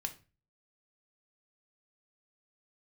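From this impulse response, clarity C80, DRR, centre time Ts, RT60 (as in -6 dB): 21.0 dB, 5.5 dB, 6 ms, 0.35 s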